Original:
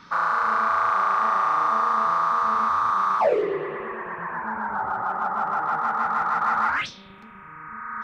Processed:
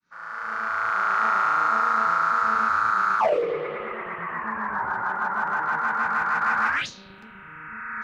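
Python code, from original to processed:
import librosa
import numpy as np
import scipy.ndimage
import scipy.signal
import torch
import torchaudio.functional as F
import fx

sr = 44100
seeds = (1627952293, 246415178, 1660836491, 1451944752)

y = fx.fade_in_head(x, sr, length_s=1.26)
y = fx.formant_shift(y, sr, semitones=2)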